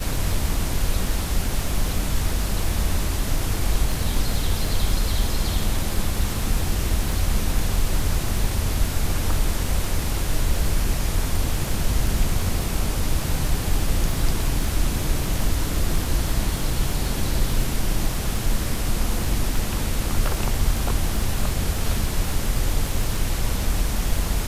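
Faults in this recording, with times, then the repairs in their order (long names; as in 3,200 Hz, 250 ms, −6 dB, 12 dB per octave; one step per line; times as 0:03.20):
surface crackle 23 per second −26 dBFS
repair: click removal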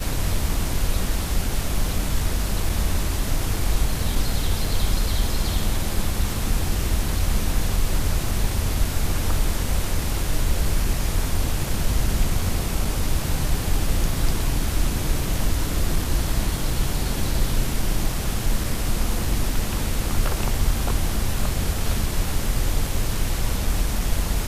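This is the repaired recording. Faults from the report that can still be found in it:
none of them is left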